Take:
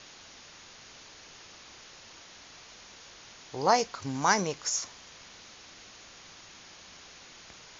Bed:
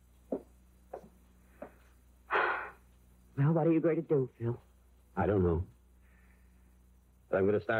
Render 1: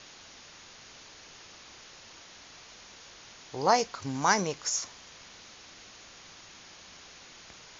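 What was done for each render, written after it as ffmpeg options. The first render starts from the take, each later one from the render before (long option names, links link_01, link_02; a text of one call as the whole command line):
ffmpeg -i in.wav -af anull out.wav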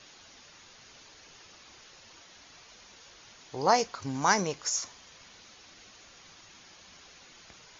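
ffmpeg -i in.wav -af "afftdn=noise_reduction=6:noise_floor=-52" out.wav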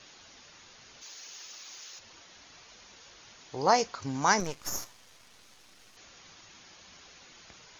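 ffmpeg -i in.wav -filter_complex "[0:a]asplit=3[link_01][link_02][link_03];[link_01]afade=type=out:start_time=1.01:duration=0.02[link_04];[link_02]aemphasis=mode=production:type=riaa,afade=type=in:start_time=1.01:duration=0.02,afade=type=out:start_time=1.98:duration=0.02[link_05];[link_03]afade=type=in:start_time=1.98:duration=0.02[link_06];[link_04][link_05][link_06]amix=inputs=3:normalize=0,asettb=1/sr,asplit=3[link_07][link_08][link_09];[link_07]atrim=end=4.404[link_10];[link_08]atrim=start=4.4:end=5.97,asetpts=PTS-STARTPTS,afade=type=in:duration=0.004:curve=qsin,afade=type=out:start_time=1.566:duration=0.004:curve=qsin,aeval=exprs='max(val(0),0)':channel_layout=same[link_11];[link_09]atrim=start=5.966[link_12];[link_10][link_11]acrossfade=duration=0.004:curve1=hsin:curve2=qsin[link_13];[link_13][link_12]acrossfade=duration=0.004:curve1=qsin:curve2=hsin" out.wav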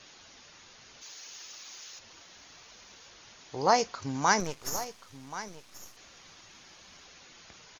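ffmpeg -i in.wav -af "aecho=1:1:1081:0.188" out.wav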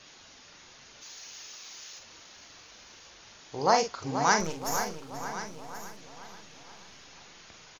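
ffmpeg -i in.wav -filter_complex "[0:a]asplit=2[link_01][link_02];[link_02]adelay=43,volume=-7dB[link_03];[link_01][link_03]amix=inputs=2:normalize=0,asplit=2[link_04][link_05];[link_05]adelay=480,lowpass=frequency=4100:poles=1,volume=-9dB,asplit=2[link_06][link_07];[link_07]adelay=480,lowpass=frequency=4100:poles=1,volume=0.53,asplit=2[link_08][link_09];[link_09]adelay=480,lowpass=frequency=4100:poles=1,volume=0.53,asplit=2[link_10][link_11];[link_11]adelay=480,lowpass=frequency=4100:poles=1,volume=0.53,asplit=2[link_12][link_13];[link_13]adelay=480,lowpass=frequency=4100:poles=1,volume=0.53,asplit=2[link_14][link_15];[link_15]adelay=480,lowpass=frequency=4100:poles=1,volume=0.53[link_16];[link_04][link_06][link_08][link_10][link_12][link_14][link_16]amix=inputs=7:normalize=0" out.wav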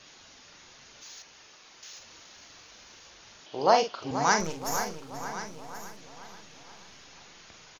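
ffmpeg -i in.wav -filter_complex "[0:a]asettb=1/sr,asplit=3[link_01][link_02][link_03];[link_01]atrim=end=1.224[link_04];[link_02]atrim=start=1.22:end=1.83,asetpts=PTS-STARTPTS,afade=type=in:duration=0.004:curve=qsin,afade=type=out:start_time=0.606:duration=0.004:curve=qsin,lowpass=frequency=1700:poles=1[link_05];[link_03]atrim=start=1.826[link_06];[link_04][link_05]acrossfade=duration=0.004:curve1=hsin:curve2=qsin[link_07];[link_07][link_06]acrossfade=duration=0.004:curve1=qsin:curve2=hsin,asettb=1/sr,asplit=3[link_08][link_09][link_10];[link_08]atrim=end=3.464[link_11];[link_09]atrim=start=3.46:end=4.11,asetpts=PTS-STARTPTS,afade=type=in:duration=0.004:curve=qsin,afade=type=out:start_time=0.646:duration=0.004:curve=qsin,highpass=170,equalizer=frequency=350:width_type=q:width=4:gain=3,equalizer=frequency=620:width_type=q:width=4:gain=6,equalizer=frequency=2000:width_type=q:width=4:gain=-4,equalizer=frequency=3000:width_type=q:width=4:gain=9,lowpass=frequency=5500:width=0.5412,lowpass=frequency=5500:width=1.3066[link_12];[link_10]atrim=start=4.106[link_13];[link_11][link_12]acrossfade=duration=0.004:curve1=hsin:curve2=qsin[link_14];[link_14][link_13]acrossfade=duration=0.004:curve1=qsin:curve2=hsin" out.wav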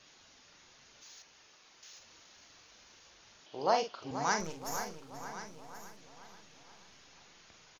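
ffmpeg -i in.wav -af "volume=-7.5dB" out.wav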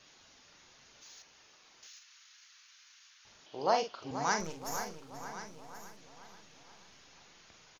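ffmpeg -i in.wav -filter_complex "[0:a]asettb=1/sr,asplit=3[link_01][link_02][link_03];[link_01]atrim=end=1.874[link_04];[link_02]atrim=start=1.87:end=3.25,asetpts=PTS-STARTPTS,afade=type=in:duration=0.004:curve=qsin,afade=type=out:start_time=1.376:duration=0.004:curve=qsin,highpass=frequency=1300:width=0.5412,highpass=frequency=1300:width=1.3066[link_05];[link_03]atrim=start=3.246[link_06];[link_04][link_05]acrossfade=duration=0.004:curve1=hsin:curve2=qsin[link_07];[link_07][link_06]acrossfade=duration=0.004:curve1=qsin:curve2=hsin" out.wav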